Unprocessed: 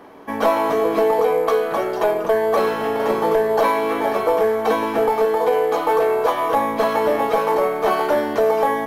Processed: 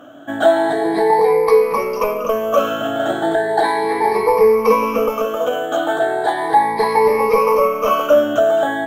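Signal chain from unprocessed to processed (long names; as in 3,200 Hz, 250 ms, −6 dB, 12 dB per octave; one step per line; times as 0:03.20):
rippled gain that drifts along the octave scale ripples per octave 0.86, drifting +0.36 Hz, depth 22 dB
level −2 dB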